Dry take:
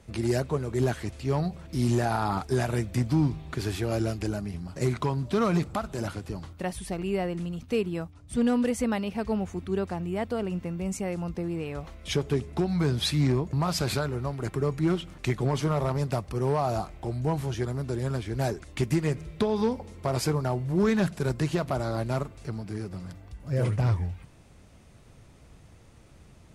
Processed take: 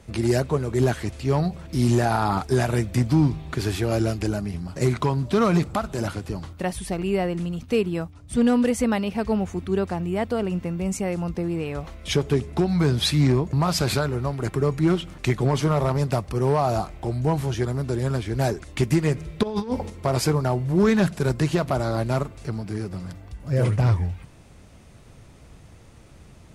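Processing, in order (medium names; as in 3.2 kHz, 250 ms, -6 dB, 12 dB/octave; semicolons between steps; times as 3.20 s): 19.43–19.90 s: compressor with a negative ratio -30 dBFS, ratio -0.5; trim +5 dB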